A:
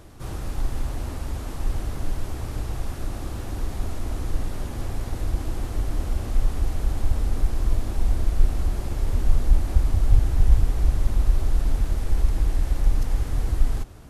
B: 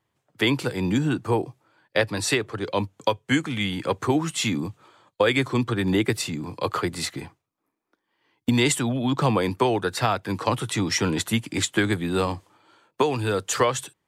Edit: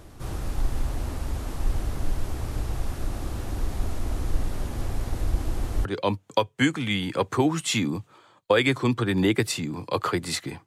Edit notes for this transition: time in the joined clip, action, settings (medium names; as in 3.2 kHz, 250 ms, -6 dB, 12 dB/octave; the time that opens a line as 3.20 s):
A
5.85 s: go over to B from 2.55 s